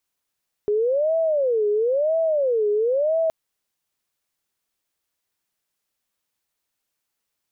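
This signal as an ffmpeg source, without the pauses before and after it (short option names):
-f lavfi -i "aevalsrc='0.133*sin(2*PI*(534.5*t-120.5/(2*PI*0.99)*sin(2*PI*0.99*t)))':d=2.62:s=44100"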